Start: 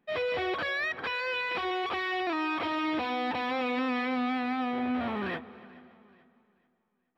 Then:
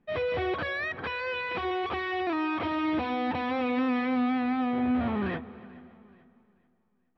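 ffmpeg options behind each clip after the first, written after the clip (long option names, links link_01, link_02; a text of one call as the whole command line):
ffmpeg -i in.wav -af "aemphasis=mode=reproduction:type=bsi" out.wav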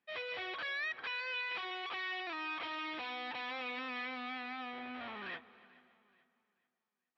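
ffmpeg -i in.wav -af "bandpass=frequency=4200:width_type=q:width=0.69:csg=0,volume=-1dB" out.wav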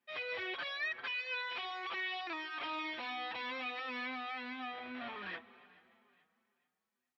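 ffmpeg -i in.wav -filter_complex "[0:a]asplit=2[link_01][link_02];[link_02]adelay=5.4,afreqshift=2[link_03];[link_01][link_03]amix=inputs=2:normalize=1,volume=3.5dB" out.wav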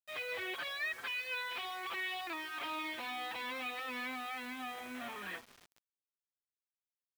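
ffmpeg -i in.wav -af "acrusher=bits=8:mix=0:aa=0.000001" out.wav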